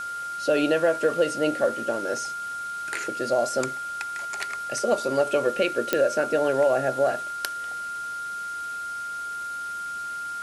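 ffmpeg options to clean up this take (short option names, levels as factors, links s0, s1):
-af "adeclick=t=4,bandreject=f=1400:w=30,afwtdn=0.0056"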